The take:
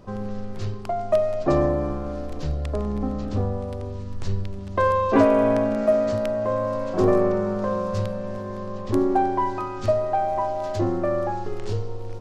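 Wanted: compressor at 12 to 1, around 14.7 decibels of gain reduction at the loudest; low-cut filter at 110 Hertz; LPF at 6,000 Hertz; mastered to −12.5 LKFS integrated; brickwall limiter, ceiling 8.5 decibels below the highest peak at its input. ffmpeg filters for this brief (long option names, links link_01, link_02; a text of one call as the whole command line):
ffmpeg -i in.wav -af "highpass=110,lowpass=6000,acompressor=threshold=-28dB:ratio=12,volume=21.5dB,alimiter=limit=-3.5dB:level=0:latency=1" out.wav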